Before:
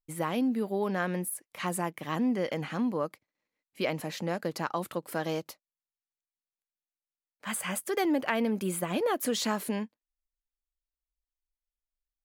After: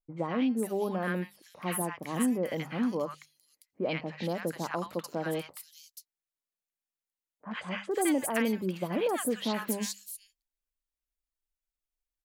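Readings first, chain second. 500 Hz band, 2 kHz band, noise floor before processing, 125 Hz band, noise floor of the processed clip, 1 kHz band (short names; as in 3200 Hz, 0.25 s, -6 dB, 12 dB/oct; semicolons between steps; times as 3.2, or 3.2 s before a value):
-0.5 dB, -1.5 dB, under -85 dBFS, -0.5 dB, under -85 dBFS, -2.0 dB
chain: notches 50/100/150/200 Hz; three bands offset in time lows, mids, highs 80/480 ms, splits 1100/4400 Hz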